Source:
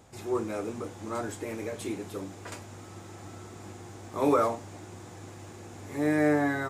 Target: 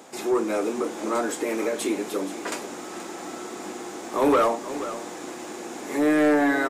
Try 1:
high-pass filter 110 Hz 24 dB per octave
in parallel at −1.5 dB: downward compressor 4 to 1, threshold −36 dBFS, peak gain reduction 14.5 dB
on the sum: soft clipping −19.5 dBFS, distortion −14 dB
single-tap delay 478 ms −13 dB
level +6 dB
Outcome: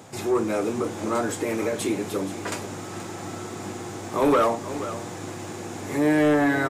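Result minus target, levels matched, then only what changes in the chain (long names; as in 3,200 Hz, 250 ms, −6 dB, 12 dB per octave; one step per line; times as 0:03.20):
125 Hz band +12.0 dB
change: high-pass filter 230 Hz 24 dB per octave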